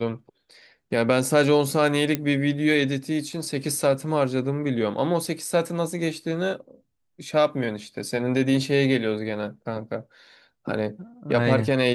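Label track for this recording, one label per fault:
2.150000	2.150000	pop -9 dBFS

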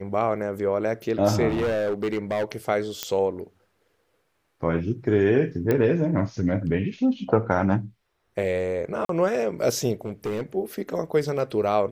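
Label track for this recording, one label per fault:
1.480000	2.440000	clipped -21 dBFS
3.030000	3.030000	pop -9 dBFS
5.710000	5.710000	pop -11 dBFS
9.050000	9.090000	gap 43 ms
10.050000	10.420000	clipped -24 dBFS

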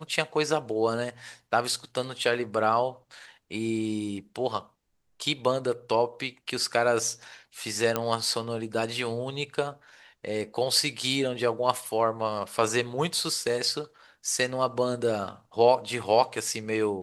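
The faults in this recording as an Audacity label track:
7.960000	7.960000	pop -10 dBFS

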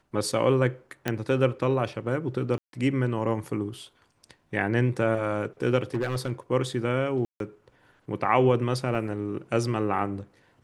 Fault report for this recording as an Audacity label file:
1.080000	1.080000	pop -12 dBFS
2.580000	2.730000	gap 0.152 s
5.940000	6.320000	clipped -22 dBFS
7.250000	7.400000	gap 0.152 s
8.950000	8.950000	gap 2.9 ms

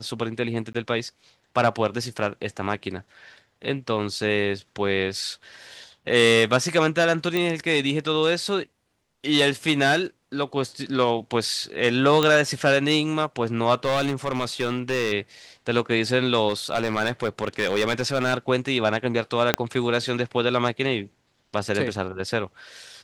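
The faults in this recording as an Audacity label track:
0.730000	0.740000	gap 15 ms
7.370000	7.370000	pop -11 dBFS
12.230000	12.230000	pop -7 dBFS
13.840000	15.120000	clipped -19 dBFS
16.480000	18.340000	clipped -17 dBFS
19.540000	19.540000	pop -2 dBFS

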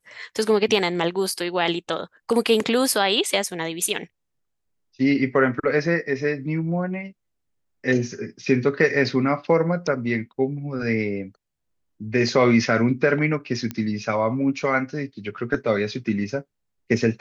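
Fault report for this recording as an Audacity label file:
13.710000	13.710000	pop -14 dBFS

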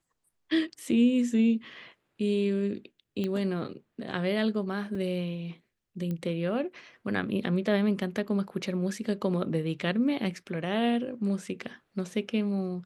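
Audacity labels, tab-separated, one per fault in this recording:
3.240000	3.240000	pop -20 dBFS
4.950000	4.950000	gap 3.1 ms
6.110000	6.110000	pop -23 dBFS

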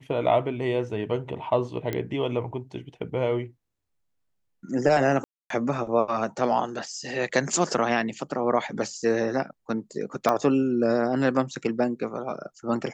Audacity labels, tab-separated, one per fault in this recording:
1.930000	1.930000	pop -15 dBFS
5.240000	5.500000	gap 0.263 s
10.290000	10.290000	pop -10 dBFS

